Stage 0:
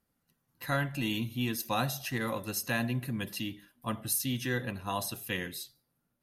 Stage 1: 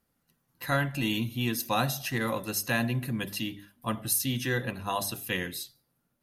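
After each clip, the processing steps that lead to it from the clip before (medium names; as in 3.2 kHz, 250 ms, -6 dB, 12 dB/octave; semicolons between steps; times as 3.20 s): hum notches 50/100/150/200/250/300 Hz; trim +3.5 dB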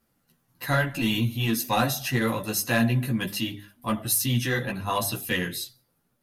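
saturation -18 dBFS, distortion -21 dB; chorus voices 4, 0.73 Hz, delay 13 ms, depth 4.8 ms; trim +7.5 dB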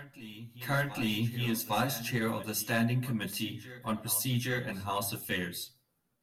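reverse echo 810 ms -15 dB; trim -6.5 dB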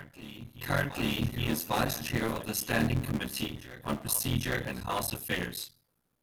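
cycle switcher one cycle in 3, muted; trim +2.5 dB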